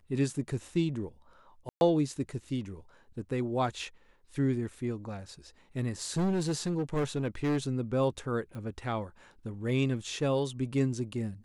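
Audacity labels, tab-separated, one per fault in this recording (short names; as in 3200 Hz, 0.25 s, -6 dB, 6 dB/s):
1.690000	1.810000	gap 0.121 s
6.020000	7.580000	clipped -25.5 dBFS
8.550000	8.550000	pop -31 dBFS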